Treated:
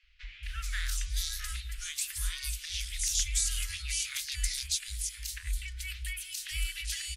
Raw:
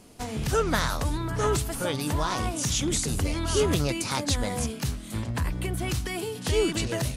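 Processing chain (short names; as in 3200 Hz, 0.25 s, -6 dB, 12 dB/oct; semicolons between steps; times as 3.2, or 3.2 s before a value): inverse Chebyshev band-stop 120–850 Hz, stop band 50 dB; three bands offset in time mids, lows, highs 30/430 ms, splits 950/3200 Hz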